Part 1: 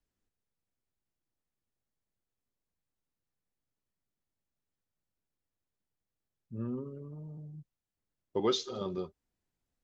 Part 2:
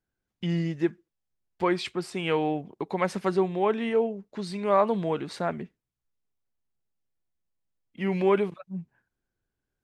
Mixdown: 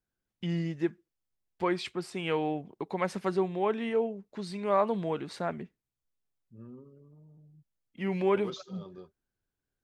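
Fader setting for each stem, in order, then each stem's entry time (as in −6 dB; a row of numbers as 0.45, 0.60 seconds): −11.0, −4.0 decibels; 0.00, 0.00 seconds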